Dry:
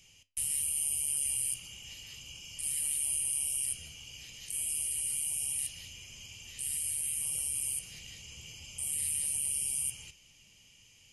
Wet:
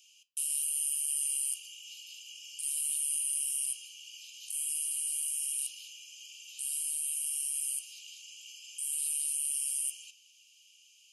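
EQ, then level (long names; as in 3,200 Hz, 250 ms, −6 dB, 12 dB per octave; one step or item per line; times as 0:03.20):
Butterworth high-pass 2,500 Hz 96 dB per octave
0.0 dB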